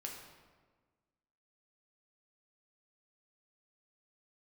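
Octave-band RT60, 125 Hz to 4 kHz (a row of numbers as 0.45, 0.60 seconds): 1.7, 1.7, 1.5, 1.4, 1.2, 0.90 seconds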